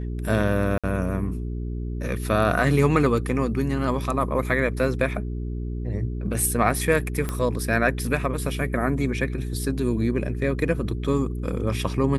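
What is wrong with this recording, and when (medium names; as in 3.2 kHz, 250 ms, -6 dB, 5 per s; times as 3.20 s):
hum 60 Hz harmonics 7 -29 dBFS
0.78–0.84 s: dropout 56 ms
7.29 s: pop -13 dBFS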